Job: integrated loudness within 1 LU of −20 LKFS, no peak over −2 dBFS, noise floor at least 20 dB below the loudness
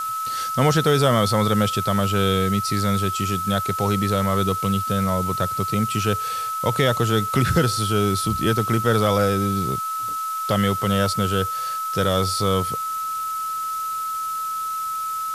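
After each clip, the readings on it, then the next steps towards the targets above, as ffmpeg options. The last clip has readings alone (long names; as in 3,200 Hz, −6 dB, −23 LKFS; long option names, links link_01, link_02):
interfering tone 1,300 Hz; level of the tone −24 dBFS; background noise floor −27 dBFS; target noise floor −42 dBFS; integrated loudness −21.5 LKFS; sample peak −6.0 dBFS; target loudness −20.0 LKFS
→ -af "bandreject=frequency=1300:width=30"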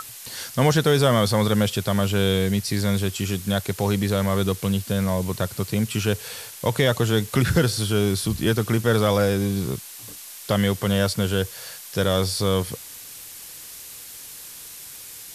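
interfering tone none found; background noise floor −40 dBFS; target noise floor −43 dBFS
→ -af "afftdn=noise_reduction=6:noise_floor=-40"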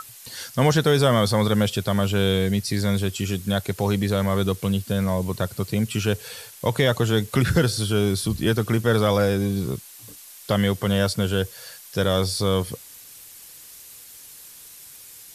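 background noise floor −45 dBFS; integrated loudness −22.5 LKFS; sample peak −7.5 dBFS; target loudness −20.0 LKFS
→ -af "volume=2.5dB"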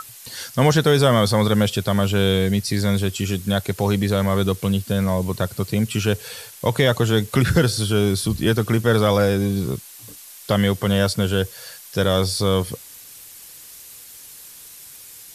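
integrated loudness −20.0 LKFS; sample peak −5.0 dBFS; background noise floor −42 dBFS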